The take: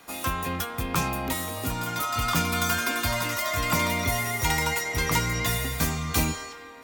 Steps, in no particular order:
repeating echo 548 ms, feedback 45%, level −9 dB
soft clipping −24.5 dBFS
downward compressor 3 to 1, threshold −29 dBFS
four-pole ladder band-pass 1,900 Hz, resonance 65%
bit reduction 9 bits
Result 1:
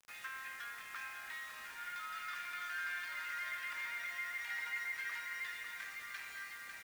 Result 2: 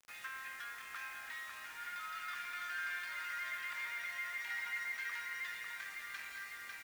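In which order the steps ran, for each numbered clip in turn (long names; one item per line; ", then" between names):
soft clipping, then repeating echo, then downward compressor, then four-pole ladder band-pass, then bit reduction
repeating echo, then soft clipping, then downward compressor, then four-pole ladder band-pass, then bit reduction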